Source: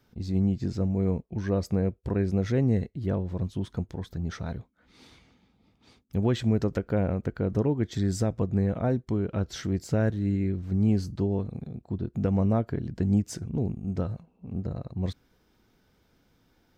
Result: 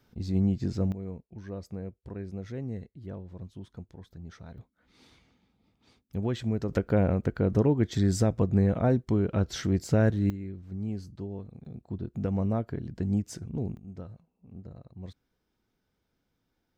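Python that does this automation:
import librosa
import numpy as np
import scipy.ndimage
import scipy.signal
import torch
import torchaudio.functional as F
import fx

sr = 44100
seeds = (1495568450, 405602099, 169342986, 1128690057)

y = fx.gain(x, sr, db=fx.steps((0.0, -0.5), (0.92, -12.0), (4.58, -5.0), (6.69, 2.0), (10.3, -10.5), (11.65, -4.0), (13.77, -12.5)))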